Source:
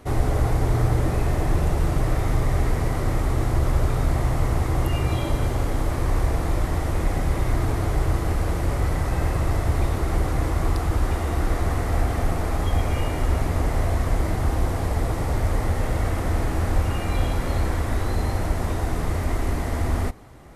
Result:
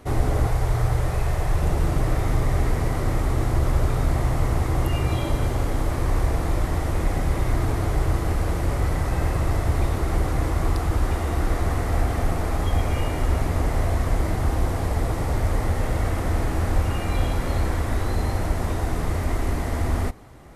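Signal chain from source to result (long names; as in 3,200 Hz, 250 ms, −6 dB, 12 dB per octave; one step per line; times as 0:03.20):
0:00.47–0:01.63: parametric band 260 Hz −13 dB 0.87 octaves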